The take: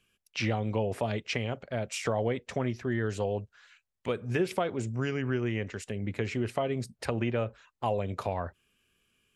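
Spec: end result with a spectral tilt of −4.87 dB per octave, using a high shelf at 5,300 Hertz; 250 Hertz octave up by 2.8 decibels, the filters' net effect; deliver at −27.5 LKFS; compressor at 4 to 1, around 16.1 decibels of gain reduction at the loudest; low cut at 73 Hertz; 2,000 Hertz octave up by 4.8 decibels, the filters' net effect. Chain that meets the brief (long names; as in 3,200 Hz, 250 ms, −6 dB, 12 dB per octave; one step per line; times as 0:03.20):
high-pass filter 73 Hz
parametric band 250 Hz +3.5 dB
parametric band 2,000 Hz +7 dB
high-shelf EQ 5,300 Hz −8 dB
downward compressor 4 to 1, threshold −43 dBFS
level +17.5 dB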